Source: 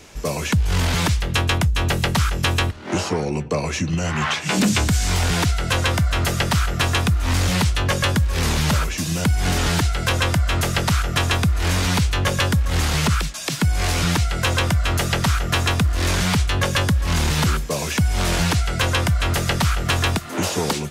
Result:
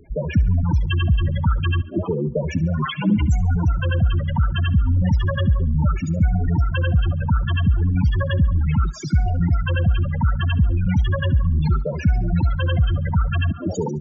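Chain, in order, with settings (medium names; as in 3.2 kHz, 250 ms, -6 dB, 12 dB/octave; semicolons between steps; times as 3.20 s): loudest bins only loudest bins 8; thinning echo 104 ms, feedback 49%, high-pass 170 Hz, level -19 dB; time stretch by phase-locked vocoder 0.67×; trim +3 dB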